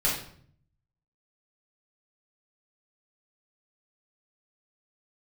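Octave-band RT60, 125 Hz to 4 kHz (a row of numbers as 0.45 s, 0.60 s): 1.1 s, 0.80 s, 0.60 s, 0.55 s, 0.50 s, 0.45 s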